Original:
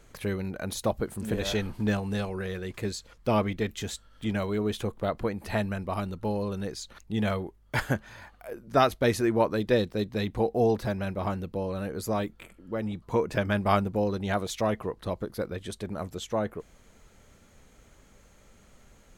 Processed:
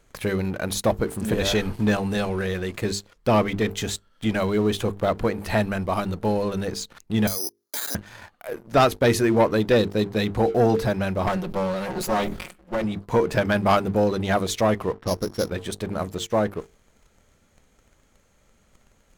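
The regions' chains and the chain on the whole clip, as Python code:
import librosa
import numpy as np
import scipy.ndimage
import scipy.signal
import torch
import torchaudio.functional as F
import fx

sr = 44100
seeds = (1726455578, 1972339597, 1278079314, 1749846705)

y = fx.chain(x, sr, fx.steep_highpass(hz=240.0, slope=48),
    fx.level_steps(step_db=22),
    fx.resample_bad(factor=8, down='filtered', up='zero_stuff'), at=(7.27, 7.95))
y = fx.chain(y, sr, fx.lower_of_two(delay_ms=5.5),
    fx.sustainer(db_per_s=61.0), at=(11.27, 12.84))
y = fx.chain(y, sr, fx.sample_sort(block=8),
    fx.env_lowpass(base_hz=1600.0, full_db=-29.5), at=(14.94, 15.49))
y = fx.hum_notches(y, sr, base_hz=50, count=9)
y = fx.leveller(y, sr, passes=2)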